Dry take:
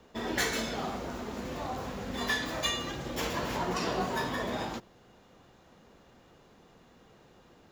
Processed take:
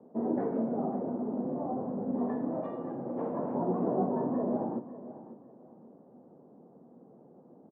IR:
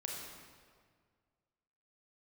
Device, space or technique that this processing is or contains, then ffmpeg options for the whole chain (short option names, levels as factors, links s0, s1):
under water: -filter_complex "[0:a]highpass=f=150:w=0.5412,highpass=f=150:w=1.3066,lowpass=f=750:w=0.5412,lowpass=f=750:w=1.3066,equalizer=f=250:t=o:w=0.42:g=5,asettb=1/sr,asplit=3[s0][s1][s2];[s0]atrim=end=2.614[s3];[s1]atrim=start=2.61:end=3.55,asetpts=PTS-STARTPTS,afade=t=in:d=0.004:c=qsin,afade=t=out:st=0.936:d=0.004:c=qsin,tiltshelf=f=690:g=-4.5[s4];[s2]atrim=start=3.546[s5];[s3][s4]acrossfade=d=0.004:c1=hsin:c2=qsin[s6];[s6][s5]acrossfade=d=0.004:c1=qsin:c2=hsin,aecho=1:1:547|1094|1641:0.188|0.049|0.0127,volume=1.5"